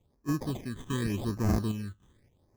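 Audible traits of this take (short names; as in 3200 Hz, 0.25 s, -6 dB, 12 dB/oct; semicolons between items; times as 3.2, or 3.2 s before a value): random-step tremolo; aliases and images of a low sample rate 1400 Hz, jitter 0%; phasing stages 8, 0.86 Hz, lowest notch 640–3400 Hz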